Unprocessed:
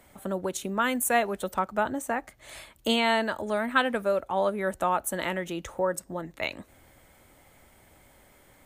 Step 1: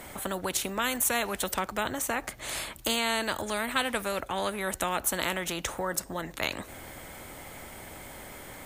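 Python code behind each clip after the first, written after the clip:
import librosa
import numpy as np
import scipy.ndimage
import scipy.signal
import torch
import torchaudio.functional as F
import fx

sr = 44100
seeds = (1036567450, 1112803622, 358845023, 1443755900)

y = fx.spectral_comp(x, sr, ratio=2.0)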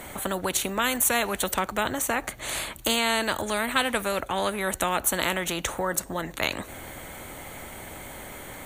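y = fx.notch(x, sr, hz=5100.0, q=5.7)
y = y * librosa.db_to_amplitude(4.0)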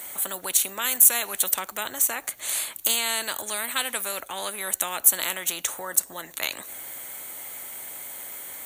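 y = fx.riaa(x, sr, side='recording')
y = y * librosa.db_to_amplitude(-6.0)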